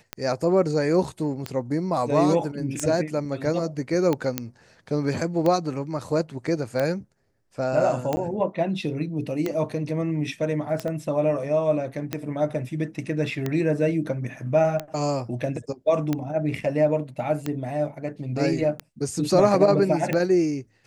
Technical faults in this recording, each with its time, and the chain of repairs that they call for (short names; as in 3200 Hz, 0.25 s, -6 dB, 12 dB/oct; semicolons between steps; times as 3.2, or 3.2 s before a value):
tick 45 rpm -12 dBFS
4.38 pop -8 dBFS
8.16–8.17 gap 10 ms
10.88 pop -20 dBFS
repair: de-click; interpolate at 8.16, 10 ms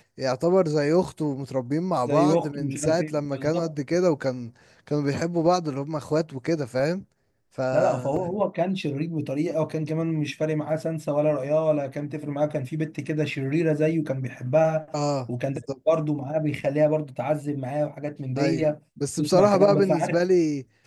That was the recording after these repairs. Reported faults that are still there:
4.38 pop
10.88 pop